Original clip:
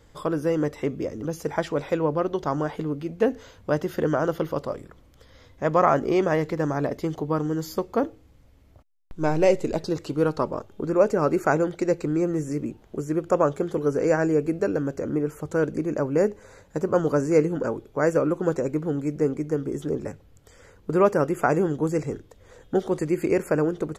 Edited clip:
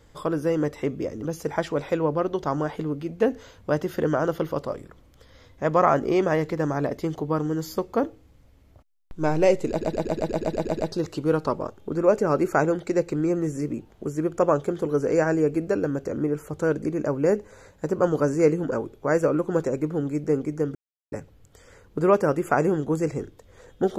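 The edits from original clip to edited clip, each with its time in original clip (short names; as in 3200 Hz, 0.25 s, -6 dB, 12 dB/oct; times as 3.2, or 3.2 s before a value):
9.69 stutter 0.12 s, 10 plays
19.67–20.04 mute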